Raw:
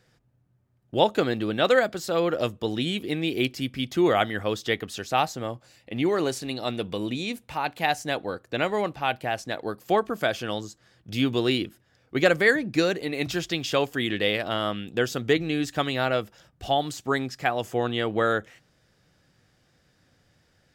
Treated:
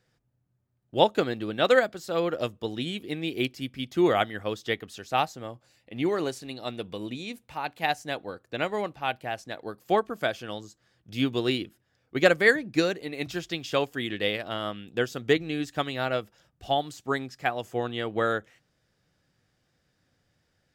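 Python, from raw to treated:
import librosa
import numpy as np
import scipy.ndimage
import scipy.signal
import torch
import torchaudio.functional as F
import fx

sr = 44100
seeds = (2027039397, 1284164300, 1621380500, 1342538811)

y = fx.upward_expand(x, sr, threshold_db=-32.0, expansion=1.5)
y = y * librosa.db_to_amplitude(1.0)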